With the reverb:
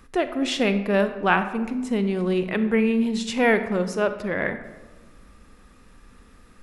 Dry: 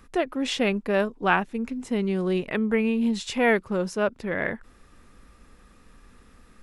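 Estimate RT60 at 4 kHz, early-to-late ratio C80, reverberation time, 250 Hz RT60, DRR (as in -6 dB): 0.65 s, 12.5 dB, 1.2 s, 1.5 s, 9.5 dB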